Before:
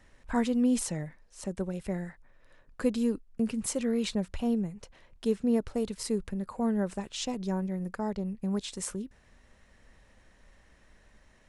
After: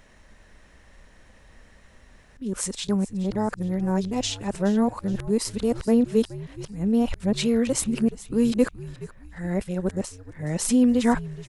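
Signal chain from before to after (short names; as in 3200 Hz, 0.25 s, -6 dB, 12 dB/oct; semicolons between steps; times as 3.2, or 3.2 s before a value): whole clip reversed; frequency-shifting echo 0.423 s, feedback 39%, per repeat -87 Hz, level -17 dB; gain +7 dB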